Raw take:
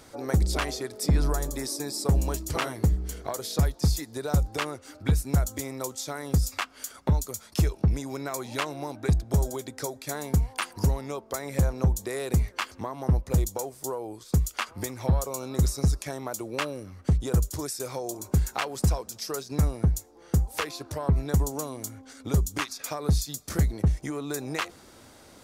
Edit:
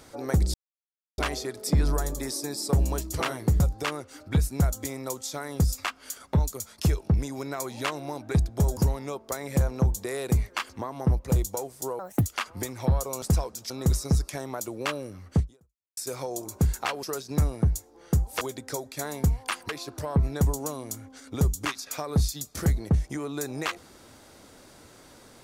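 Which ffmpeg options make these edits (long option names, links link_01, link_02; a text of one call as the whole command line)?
ffmpeg -i in.wav -filter_complex "[0:a]asplit=12[link_01][link_02][link_03][link_04][link_05][link_06][link_07][link_08][link_09][link_10][link_11][link_12];[link_01]atrim=end=0.54,asetpts=PTS-STARTPTS,afade=type=out:start_time=0.536:duration=0.004:curve=hsin,apad=pad_dur=0.64[link_13];[link_02]atrim=start=0.54:end=2.962,asetpts=PTS-STARTPTS,afade=type=in:duration=0.004:curve=hsin[link_14];[link_03]atrim=start=4.338:end=9.512[link_15];[link_04]atrim=start=10.788:end=14.014[link_16];[link_05]atrim=start=14.01:end=14.47,asetpts=PTS-STARTPTS,asetrate=74970,aresample=44100[link_17];[link_06]atrim=start=14.466:end=15.432[link_18];[link_07]atrim=start=18.758:end=19.242[link_19];[link_08]atrim=start=15.428:end=17.7,asetpts=PTS-STARTPTS,afade=type=out:start_time=1.692:duration=0.58:curve=exp[link_20];[link_09]atrim=start=17.7:end=18.762,asetpts=PTS-STARTPTS,afade=type=in:duration=0.004:curve=hsin[link_21];[link_10]atrim=start=19.238:end=20.622[link_22];[link_11]atrim=start=9.508:end=10.792[link_23];[link_12]atrim=start=20.618[link_24];[link_13][link_14]concat=n=2:v=0:a=1[link_25];[link_25][link_15]acrossfade=duration=0.004:curve1=hsin:curve2=hsin[link_26];[link_26][link_16]acrossfade=duration=0.004:curve1=hsin:curve2=hsin[link_27];[link_27][link_17]acrossfade=duration=0.004:curve1=hsin:curve2=hsin[link_28];[link_28][link_18]acrossfade=duration=0.004:curve1=hsin:curve2=hsin[link_29];[link_29][link_19]acrossfade=duration=0.004:curve1=hsin:curve2=hsin[link_30];[link_20][link_21]concat=n=2:v=0:a=1[link_31];[link_30][link_31]acrossfade=duration=0.004:curve1=hsin:curve2=hsin[link_32];[link_32][link_22]acrossfade=duration=0.004:curve1=hsin:curve2=hsin[link_33];[link_33][link_23]acrossfade=duration=0.004:curve1=hsin:curve2=hsin[link_34];[link_34][link_24]acrossfade=duration=0.004:curve1=hsin:curve2=hsin" out.wav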